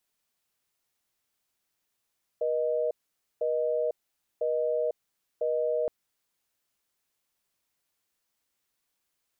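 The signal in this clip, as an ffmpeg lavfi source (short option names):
-f lavfi -i "aevalsrc='0.0422*(sin(2*PI*480*t)+sin(2*PI*620*t))*clip(min(mod(t,1),0.5-mod(t,1))/0.005,0,1)':d=3.47:s=44100"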